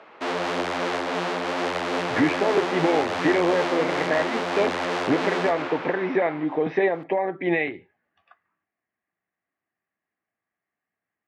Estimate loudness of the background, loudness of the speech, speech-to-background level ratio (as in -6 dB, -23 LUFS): -27.0 LUFS, -25.0 LUFS, 2.0 dB